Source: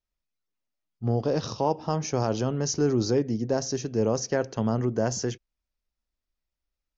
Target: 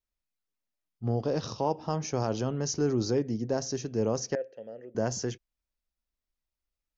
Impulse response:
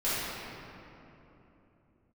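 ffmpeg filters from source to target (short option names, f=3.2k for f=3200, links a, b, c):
-filter_complex "[0:a]asettb=1/sr,asplit=3[a][b][c];[a]atrim=end=4.354[d];[b]atrim=start=4.35:end=4.95,asetpts=PTS-STARTPTS,afade=t=in:d=0.004:c=qsin,afade=t=out:st=0.596:d=0.004:c=qsin,asplit=3[e][f][g];[e]bandpass=f=530:t=q:w=8,volume=0dB[h];[f]bandpass=f=1.84k:t=q:w=8,volume=-6dB[i];[g]bandpass=f=2.48k:t=q:w=8,volume=-9dB[j];[h][i][j]amix=inputs=3:normalize=0[k];[c]atrim=start=4.946[l];[d][k]acrossfade=d=0.004:c1=hsin:c2=qsin[m];[m][l]acrossfade=d=0.004:c1=qsin:c2=hsin,volume=-3.5dB"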